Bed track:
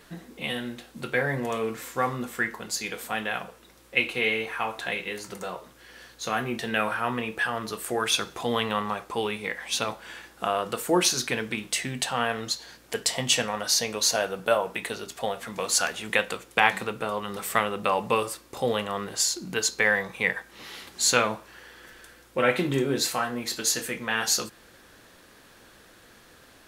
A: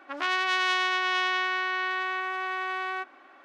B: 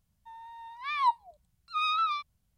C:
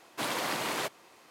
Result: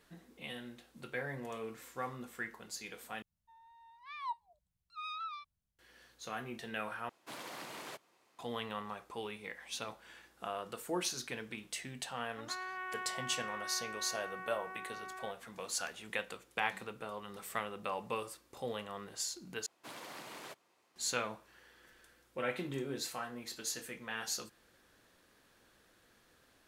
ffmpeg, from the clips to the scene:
ffmpeg -i bed.wav -i cue0.wav -i cue1.wav -i cue2.wav -filter_complex "[3:a]asplit=2[link_01][link_02];[0:a]volume=-14dB[link_03];[1:a]lowpass=frequency=2000:width=0.5412,lowpass=frequency=2000:width=1.3066[link_04];[link_03]asplit=4[link_05][link_06][link_07][link_08];[link_05]atrim=end=3.224[link_09];[2:a]atrim=end=2.57,asetpts=PTS-STARTPTS,volume=-14dB[link_10];[link_06]atrim=start=5.786:end=7.094[link_11];[link_01]atrim=end=1.3,asetpts=PTS-STARTPTS,volume=-14dB[link_12];[link_07]atrim=start=8.386:end=19.664[link_13];[link_02]atrim=end=1.3,asetpts=PTS-STARTPTS,volume=-16dB[link_14];[link_08]atrim=start=20.956[link_15];[link_04]atrim=end=3.44,asetpts=PTS-STARTPTS,volume=-14.5dB,afade=type=in:duration=0.004:curve=hsin,afade=type=out:start_time=3.436:duration=0.004:curve=hsin,adelay=12280[link_16];[link_09][link_10]acrossfade=duration=0.004:curve1=hsin:curve2=hsin[link_17];[link_17][link_11]acrossfade=duration=0.004:curve1=hsin:curve2=hsin[link_18];[link_18][link_12]acrossfade=duration=0.004:curve1=hsin:curve2=hsin[link_19];[link_19][link_13]acrossfade=duration=0.004:curve1=hsin:curve2=hsin[link_20];[link_20][link_14]acrossfade=duration=0.004:curve1=hsin:curve2=hsin[link_21];[link_21][link_15]acrossfade=duration=0.004:curve1=hsin:curve2=hsin[link_22];[link_22][link_16]amix=inputs=2:normalize=0" out.wav

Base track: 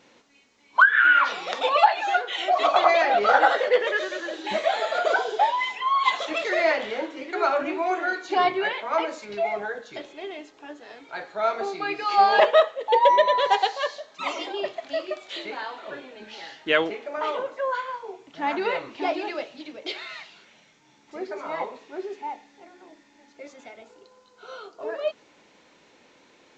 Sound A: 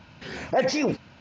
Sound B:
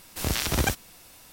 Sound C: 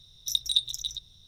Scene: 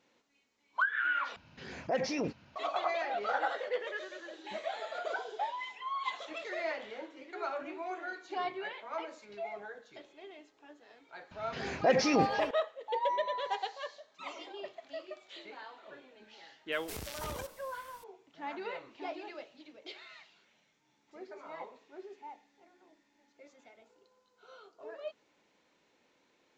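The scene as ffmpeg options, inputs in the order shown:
ffmpeg -i bed.wav -i cue0.wav -i cue1.wav -filter_complex "[1:a]asplit=2[link_01][link_02];[0:a]volume=-14.5dB[link_03];[link_02]asplit=2[link_04][link_05];[link_05]adelay=340,highpass=300,lowpass=3400,asoftclip=type=hard:threshold=-23.5dB,volume=-10dB[link_06];[link_04][link_06]amix=inputs=2:normalize=0[link_07];[2:a]acompressor=threshold=-30dB:ratio=6:attack=3.2:release=140:knee=1:detection=peak[link_08];[link_03]asplit=2[link_09][link_10];[link_09]atrim=end=1.364[link_11];[link_01]atrim=end=1.2,asetpts=PTS-STARTPTS,volume=-9.5dB[link_12];[link_10]atrim=start=2.556[link_13];[link_07]atrim=end=1.2,asetpts=PTS-STARTPTS,volume=-3.5dB,afade=type=in:duration=0.004:curve=hsin,afade=type=out:start_time=1.196:duration=0.004:curve=hsin,adelay=11310[link_14];[link_08]atrim=end=1.32,asetpts=PTS-STARTPTS,volume=-8.5dB,afade=type=in:duration=0.004:curve=hsin,afade=type=out:start_time=1.316:duration=0.004:curve=hsin,adelay=16720[link_15];[link_11][link_12]acrossfade=duration=0.004:curve1=hsin:curve2=hsin[link_16];[link_16][link_13]acrossfade=duration=0.004:curve1=hsin:curve2=hsin[link_17];[link_17][link_14][link_15]amix=inputs=3:normalize=0" out.wav

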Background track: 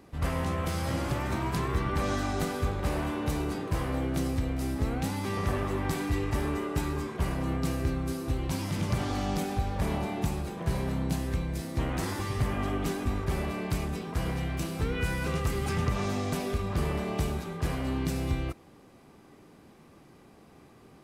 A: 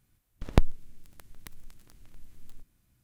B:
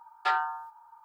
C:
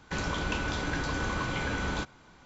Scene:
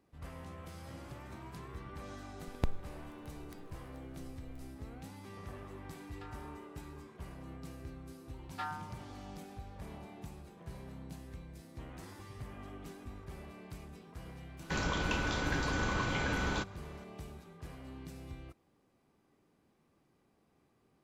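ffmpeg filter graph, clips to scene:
ffmpeg -i bed.wav -i cue0.wav -i cue1.wav -i cue2.wav -filter_complex "[2:a]asplit=2[link_01][link_02];[0:a]volume=-17.5dB[link_03];[link_01]acompressor=threshold=-34dB:ratio=6:attack=3.2:release=140:knee=1:detection=peak[link_04];[3:a]acontrast=63[link_05];[1:a]atrim=end=3.03,asetpts=PTS-STARTPTS,volume=-12.5dB,afade=type=in:duration=0.004:curve=hsin,afade=type=out:start_time=3.026:duration=0.004:curve=hsin,adelay=2060[link_06];[link_04]atrim=end=1.04,asetpts=PTS-STARTPTS,volume=-15.5dB,afade=type=in:duration=0.004:curve=hsin,afade=type=out:start_time=1.036:duration=0.004:curve=hsin,adelay=5960[link_07];[link_02]atrim=end=1.04,asetpts=PTS-STARTPTS,volume=-13.5dB,afade=type=in:duration=0.004:curve=hsin,afade=type=out:start_time=1.036:duration=0.004:curve=hsin,adelay=8330[link_08];[link_05]atrim=end=2.45,asetpts=PTS-STARTPTS,volume=-8.5dB,afade=type=in:duration=0.004:curve=hsin,afade=type=out:start_time=2.446:duration=0.004:curve=hsin,adelay=14590[link_09];[link_03][link_06][link_07][link_08][link_09]amix=inputs=5:normalize=0" out.wav

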